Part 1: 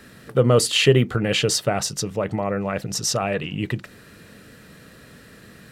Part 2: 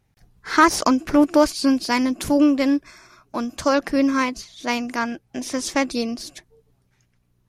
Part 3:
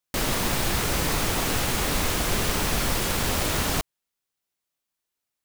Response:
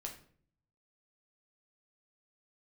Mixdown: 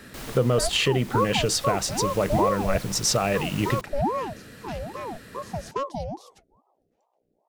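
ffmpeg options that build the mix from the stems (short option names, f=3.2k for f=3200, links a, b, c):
-filter_complex "[0:a]volume=1dB[a];[1:a]lowshelf=f=500:t=q:w=3:g=9.5,aeval=exprs='val(0)*sin(2*PI*560*n/s+560*0.5/2.4*sin(2*PI*2.4*n/s))':c=same,volume=-15dB[b];[2:a]volume=-13dB[c];[a][b][c]amix=inputs=3:normalize=0,alimiter=limit=-11dB:level=0:latency=1:release=485"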